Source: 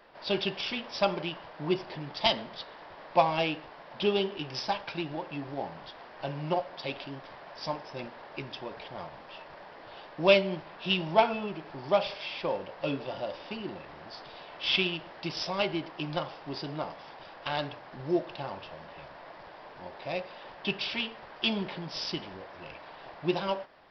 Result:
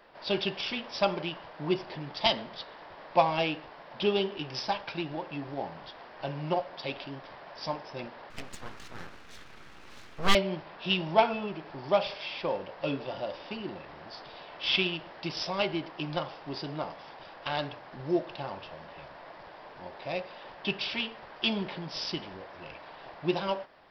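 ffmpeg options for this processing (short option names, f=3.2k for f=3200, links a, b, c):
-filter_complex "[0:a]asettb=1/sr,asplit=3[a][b][c];[a]atrim=end=8.304[d];[b]atrim=start=8.3:end=10.35,asetpts=PTS-STARTPTS,afade=t=in:d=0.004:c=qsin,afade=t=out:st=2.046:d=0.004:c=qsin,aeval=exprs='abs(val(0))':c=same[e];[c]atrim=start=10.346[f];[d][e]acrossfade=d=0.004:c1=hsin:c2=qsin[g];[g][f]acrossfade=d=0.004:c1=qsin:c2=hsin"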